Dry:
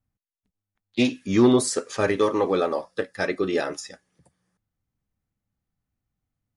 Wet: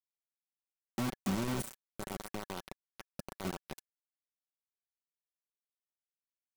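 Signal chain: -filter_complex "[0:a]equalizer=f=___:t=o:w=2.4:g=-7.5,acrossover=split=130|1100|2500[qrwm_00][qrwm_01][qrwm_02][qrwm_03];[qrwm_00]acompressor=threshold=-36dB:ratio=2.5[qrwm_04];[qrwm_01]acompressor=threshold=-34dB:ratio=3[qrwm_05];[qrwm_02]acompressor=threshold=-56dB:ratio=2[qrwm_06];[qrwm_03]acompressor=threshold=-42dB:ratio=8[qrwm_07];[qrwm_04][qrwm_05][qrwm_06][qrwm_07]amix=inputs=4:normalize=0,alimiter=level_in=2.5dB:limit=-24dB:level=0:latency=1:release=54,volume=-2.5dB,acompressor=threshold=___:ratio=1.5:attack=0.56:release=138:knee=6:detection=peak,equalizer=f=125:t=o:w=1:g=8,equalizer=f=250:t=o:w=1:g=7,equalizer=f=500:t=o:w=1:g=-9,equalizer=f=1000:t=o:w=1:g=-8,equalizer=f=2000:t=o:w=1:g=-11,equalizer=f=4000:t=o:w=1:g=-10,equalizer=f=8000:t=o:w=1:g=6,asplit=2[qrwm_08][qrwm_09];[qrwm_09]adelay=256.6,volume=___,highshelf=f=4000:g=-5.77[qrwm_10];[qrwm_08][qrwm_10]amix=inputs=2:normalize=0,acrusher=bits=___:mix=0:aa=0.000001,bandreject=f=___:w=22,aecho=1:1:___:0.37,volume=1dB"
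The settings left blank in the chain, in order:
1500, -50dB, -12dB, 5, 1700, 5.3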